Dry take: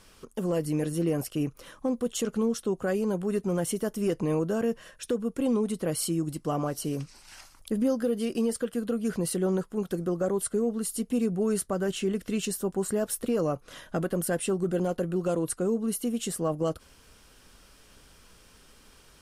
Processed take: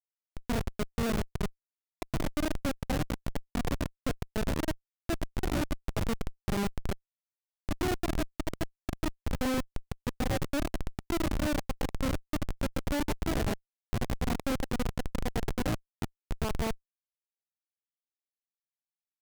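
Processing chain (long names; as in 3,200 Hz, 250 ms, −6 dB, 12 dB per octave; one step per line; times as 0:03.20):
pitch shifter +5.5 semitones
reverb whose tail is shaped and stops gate 120 ms rising, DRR 3.5 dB
comparator with hysteresis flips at −21 dBFS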